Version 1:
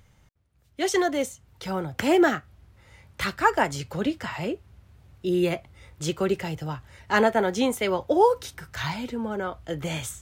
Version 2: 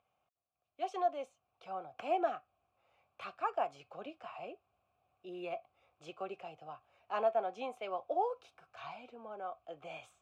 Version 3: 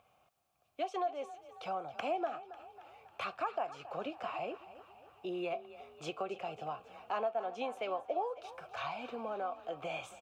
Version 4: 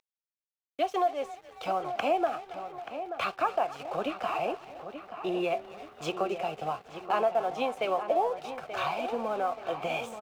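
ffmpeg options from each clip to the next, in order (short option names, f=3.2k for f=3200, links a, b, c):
-filter_complex "[0:a]asplit=3[a][b][c];[a]bandpass=f=730:t=q:w=8,volume=0dB[d];[b]bandpass=f=1.09k:t=q:w=8,volume=-6dB[e];[c]bandpass=f=2.44k:t=q:w=8,volume=-9dB[f];[d][e][f]amix=inputs=3:normalize=0,volume=-2.5dB"
-filter_complex "[0:a]acompressor=threshold=-48dB:ratio=3,asplit=7[a][b][c][d][e][f][g];[b]adelay=273,afreqshift=30,volume=-15.5dB[h];[c]adelay=546,afreqshift=60,volume=-20.2dB[i];[d]adelay=819,afreqshift=90,volume=-25dB[j];[e]adelay=1092,afreqshift=120,volume=-29.7dB[k];[f]adelay=1365,afreqshift=150,volume=-34.4dB[l];[g]adelay=1638,afreqshift=180,volume=-39.2dB[m];[a][h][i][j][k][l][m]amix=inputs=7:normalize=0,volume=11dB"
-filter_complex "[0:a]aeval=exprs='sgn(val(0))*max(abs(val(0))-0.00119,0)':c=same,asplit=2[a][b];[b]adelay=881,lowpass=f=2.5k:p=1,volume=-10dB,asplit=2[c][d];[d]adelay=881,lowpass=f=2.5k:p=1,volume=0.49,asplit=2[e][f];[f]adelay=881,lowpass=f=2.5k:p=1,volume=0.49,asplit=2[g][h];[h]adelay=881,lowpass=f=2.5k:p=1,volume=0.49,asplit=2[i][j];[j]adelay=881,lowpass=f=2.5k:p=1,volume=0.49[k];[a][c][e][g][i][k]amix=inputs=6:normalize=0,volume=8.5dB"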